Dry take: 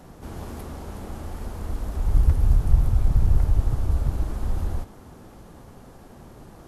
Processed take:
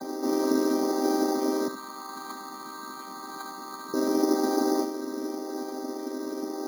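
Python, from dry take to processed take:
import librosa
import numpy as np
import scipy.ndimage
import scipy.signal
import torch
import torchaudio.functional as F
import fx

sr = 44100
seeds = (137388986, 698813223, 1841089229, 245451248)

y = fx.chord_vocoder(x, sr, chord='minor triad', root=60)
y = fx.curve_eq(y, sr, hz=(160.0, 270.0, 580.0, 1100.0, 2200.0), db=(0, -22, -23, 1, -7), at=(1.68, 3.94))
y = fx.spec_topn(y, sr, count=64)
y = y + 10.0 ** (-12.5 / 20.0) * np.pad(y, (int(74 * sr / 1000.0), 0))[:len(y)]
y = np.repeat(scipy.signal.resample_poly(y, 1, 8), 8)[:len(y)]
y = F.gain(torch.from_numpy(y), 8.5).numpy()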